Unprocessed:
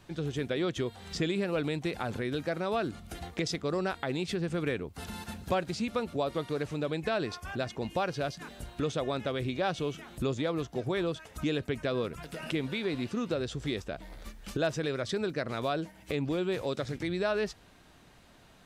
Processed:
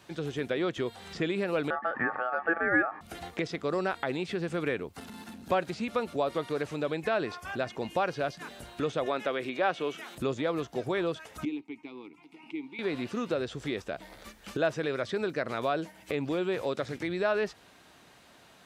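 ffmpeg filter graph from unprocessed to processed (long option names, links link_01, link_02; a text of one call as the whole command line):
ffmpeg -i in.wav -filter_complex "[0:a]asettb=1/sr,asplit=3[link_01][link_02][link_03];[link_01]atrim=end=1.704[link_04];[link_02]atrim=start=1.7:end=3.01,asetpts=PTS-STARTPTS,afade=type=in:duration=0.004:curve=qsin,afade=type=out:start_time=1.306:duration=0.004:curve=qsin,lowpass=frequency=790:width_type=q:width=3.4,aeval=exprs='val(0)*sin(2*PI*1000*n/s)':channel_layout=same[link_05];[link_03]atrim=start=3.006[link_06];[link_04][link_05]acrossfade=duration=0.004:curve1=hsin:curve2=qsin[link_07];[link_07][link_06]acrossfade=duration=0.004:curve1=qsin:curve2=hsin,asettb=1/sr,asplit=3[link_08][link_09][link_10];[link_08]atrim=end=4.994[link_11];[link_09]atrim=start=4.99:end=5.5,asetpts=PTS-STARTPTS,afade=type=in:duration=0.004:curve=qsin,afade=type=out:start_time=0.506:duration=0.004:curve=qsin,aeval=exprs='(tanh(44.7*val(0)+0.7)-tanh(0.7))/44.7':channel_layout=same,equalizer=frequency=250:width_type=o:width=0.67:gain=14,acompressor=threshold=-40dB:ratio=5:attack=3.2:release=140:knee=1:detection=peak[link_12];[link_10]atrim=start=5.496[link_13];[link_11][link_12]acrossfade=duration=0.004:curve1=hsin:curve2=qsin[link_14];[link_14][link_13]acrossfade=duration=0.004:curve1=qsin:curve2=hsin,asettb=1/sr,asplit=3[link_15][link_16][link_17];[link_15]atrim=end=9.064[link_18];[link_16]atrim=start=9.06:end=10.15,asetpts=PTS-STARTPTS,afade=type=in:duration=0.004:curve=qsin,afade=type=out:start_time=1.086:duration=0.004:curve=qsin,acrossover=split=2900[link_19][link_20];[link_20]acompressor=threshold=-57dB:ratio=4:attack=1:release=60[link_21];[link_19][link_21]amix=inputs=2:normalize=0,highpass=230,highshelf=frequency=2300:gain=9[link_22];[link_17]atrim=start=10.146[link_23];[link_18][link_22]acrossfade=duration=0.004:curve1=hsin:curve2=qsin[link_24];[link_24][link_23]acrossfade=duration=0.004:curve1=qsin:curve2=hsin,asettb=1/sr,asplit=3[link_25][link_26][link_27];[link_25]atrim=end=11.454[link_28];[link_26]atrim=start=11.45:end=12.79,asetpts=PTS-STARTPTS,afade=type=in:duration=0.004:curve=qsin,afade=type=out:start_time=1.336:duration=0.004:curve=qsin,asplit=3[link_29][link_30][link_31];[link_29]bandpass=frequency=300:width_type=q:width=8,volume=0dB[link_32];[link_30]bandpass=frequency=870:width_type=q:width=8,volume=-6dB[link_33];[link_31]bandpass=frequency=2240:width_type=q:width=8,volume=-9dB[link_34];[link_32][link_33][link_34]amix=inputs=3:normalize=0,highshelf=frequency=3600:gain=8[link_35];[link_27]atrim=start=12.786[link_36];[link_28][link_35]acrossfade=duration=0.004:curve1=hsin:curve2=qsin[link_37];[link_37][link_36]acrossfade=duration=0.004:curve1=qsin:curve2=hsin,acrossover=split=2900[link_38][link_39];[link_39]acompressor=threshold=-51dB:ratio=4:attack=1:release=60[link_40];[link_38][link_40]amix=inputs=2:normalize=0,highpass=56,lowshelf=frequency=200:gain=-11,volume=3.5dB" out.wav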